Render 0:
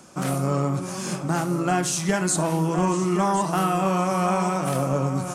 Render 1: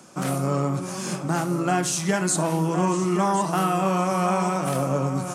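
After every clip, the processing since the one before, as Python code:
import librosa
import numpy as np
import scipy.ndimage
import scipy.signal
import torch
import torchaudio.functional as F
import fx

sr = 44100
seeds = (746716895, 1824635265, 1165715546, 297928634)

y = scipy.signal.sosfilt(scipy.signal.butter(2, 100.0, 'highpass', fs=sr, output='sos'), x)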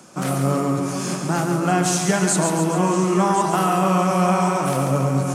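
y = fx.echo_feedback(x, sr, ms=139, feedback_pct=58, wet_db=-6)
y = y * 10.0 ** (2.5 / 20.0)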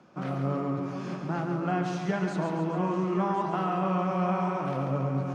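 y = fx.air_absorb(x, sr, metres=270.0)
y = y * 10.0 ** (-8.5 / 20.0)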